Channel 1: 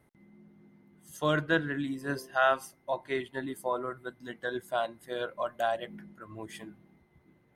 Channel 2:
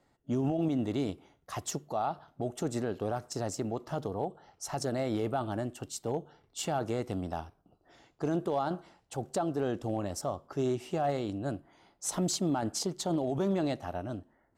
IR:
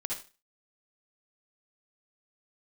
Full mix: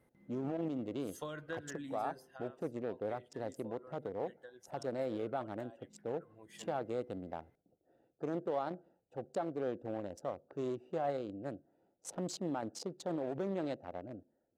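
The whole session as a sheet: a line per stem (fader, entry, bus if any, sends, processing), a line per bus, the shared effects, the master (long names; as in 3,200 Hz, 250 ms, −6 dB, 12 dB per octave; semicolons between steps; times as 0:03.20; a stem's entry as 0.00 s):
0:01.86 −6 dB → 0:02.48 −18 dB → 0:06.35 −18 dB → 0:06.64 −8 dB, 0.00 s, no send, downward compressor 12 to 1, threshold −35 dBFS, peak gain reduction 15.5 dB
−4.5 dB, 0.00 s, no send, adaptive Wiener filter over 41 samples; high-pass filter 280 Hz 6 dB per octave; high-shelf EQ 4,400 Hz −7.5 dB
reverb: not used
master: parametric band 510 Hz +8.5 dB 0.21 octaves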